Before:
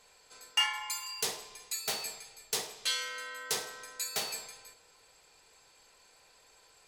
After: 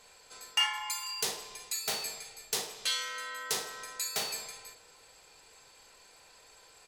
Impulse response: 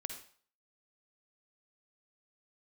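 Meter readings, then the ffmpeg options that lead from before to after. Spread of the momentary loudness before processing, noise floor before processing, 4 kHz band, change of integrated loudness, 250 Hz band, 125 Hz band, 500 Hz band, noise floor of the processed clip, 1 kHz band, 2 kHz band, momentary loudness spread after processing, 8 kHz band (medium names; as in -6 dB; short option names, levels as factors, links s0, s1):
14 LU, -63 dBFS, +1.0 dB, +0.5 dB, +1.0 dB, +1.0 dB, +0.5 dB, -59 dBFS, +1.5 dB, +0.5 dB, 15 LU, +1.0 dB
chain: -filter_complex "[0:a]asplit=2[s0][s1];[s1]acompressor=threshold=0.00794:ratio=6,volume=0.841[s2];[s0][s2]amix=inputs=2:normalize=0,asplit=2[s3][s4];[s4]adelay=39,volume=0.299[s5];[s3][s5]amix=inputs=2:normalize=0,volume=0.841"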